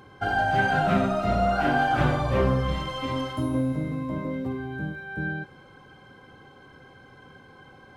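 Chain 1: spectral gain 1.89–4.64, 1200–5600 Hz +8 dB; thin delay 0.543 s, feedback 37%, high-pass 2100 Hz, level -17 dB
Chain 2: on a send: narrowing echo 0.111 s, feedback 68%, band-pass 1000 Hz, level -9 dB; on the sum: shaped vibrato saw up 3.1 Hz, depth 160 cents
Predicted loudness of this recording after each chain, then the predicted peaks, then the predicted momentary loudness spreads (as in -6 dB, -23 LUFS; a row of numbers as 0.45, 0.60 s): -25.0, -25.5 LUFS; -8.5, -9.0 dBFS; 11, 11 LU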